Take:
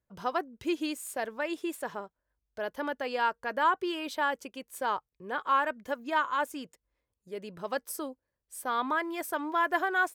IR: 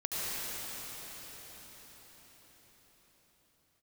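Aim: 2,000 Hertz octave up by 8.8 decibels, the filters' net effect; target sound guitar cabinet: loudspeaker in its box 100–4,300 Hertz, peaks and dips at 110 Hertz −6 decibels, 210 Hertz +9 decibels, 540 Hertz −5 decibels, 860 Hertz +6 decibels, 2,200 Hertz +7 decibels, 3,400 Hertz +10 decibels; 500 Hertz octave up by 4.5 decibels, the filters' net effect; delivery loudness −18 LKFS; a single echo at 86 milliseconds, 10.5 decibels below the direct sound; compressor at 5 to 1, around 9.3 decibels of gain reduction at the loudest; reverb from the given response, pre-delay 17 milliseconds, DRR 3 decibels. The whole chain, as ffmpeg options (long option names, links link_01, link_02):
-filter_complex "[0:a]equalizer=frequency=500:width_type=o:gain=7.5,equalizer=frequency=2000:width_type=o:gain=9,acompressor=threshold=-27dB:ratio=5,aecho=1:1:86:0.299,asplit=2[link_01][link_02];[1:a]atrim=start_sample=2205,adelay=17[link_03];[link_02][link_03]afir=irnorm=-1:irlink=0,volume=-10.5dB[link_04];[link_01][link_04]amix=inputs=2:normalize=0,highpass=100,equalizer=frequency=110:width_type=q:width=4:gain=-6,equalizer=frequency=210:width_type=q:width=4:gain=9,equalizer=frequency=540:width_type=q:width=4:gain=-5,equalizer=frequency=860:width_type=q:width=4:gain=6,equalizer=frequency=2200:width_type=q:width=4:gain=7,equalizer=frequency=3400:width_type=q:width=4:gain=10,lowpass=frequency=4300:width=0.5412,lowpass=frequency=4300:width=1.3066,volume=11.5dB"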